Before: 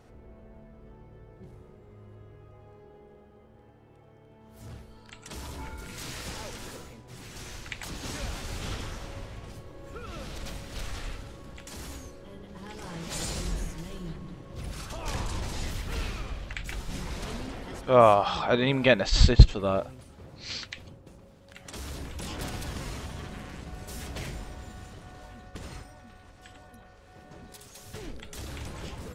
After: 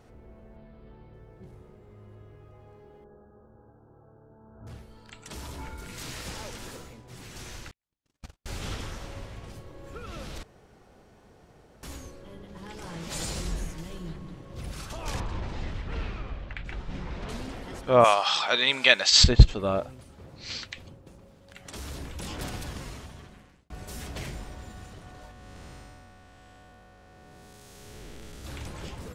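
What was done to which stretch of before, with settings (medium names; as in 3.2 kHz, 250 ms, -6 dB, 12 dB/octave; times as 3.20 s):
0.56–1.14 s: resonant high shelf 5.2 kHz -7 dB, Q 3
3.04–4.67 s: brick-wall FIR low-pass 1.7 kHz
7.71–8.46 s: gate -31 dBFS, range -57 dB
10.43–11.83 s: room tone
15.20–17.29 s: Bessel low-pass 2.4 kHz
18.04–19.24 s: frequency weighting ITU-R 468
22.53–23.70 s: fade out
25.31–28.45 s: spectral blur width 363 ms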